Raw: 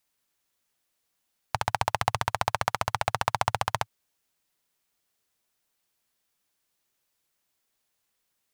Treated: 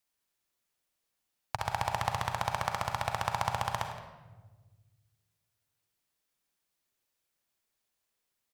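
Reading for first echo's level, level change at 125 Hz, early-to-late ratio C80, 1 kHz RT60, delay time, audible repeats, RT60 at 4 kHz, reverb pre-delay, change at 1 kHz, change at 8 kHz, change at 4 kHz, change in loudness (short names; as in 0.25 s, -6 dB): -16.0 dB, -3.0 dB, 7.0 dB, 1.1 s, 0.169 s, 1, 0.80 s, 39 ms, -4.5 dB, -5.5 dB, -5.0 dB, -4.5 dB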